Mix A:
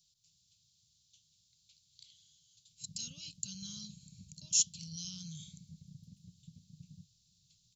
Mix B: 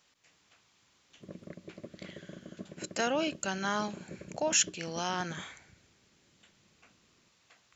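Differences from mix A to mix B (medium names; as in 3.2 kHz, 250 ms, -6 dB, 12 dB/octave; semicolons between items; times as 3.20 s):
background: entry -1.60 s; master: remove elliptic band-stop 150–4000 Hz, stop band 40 dB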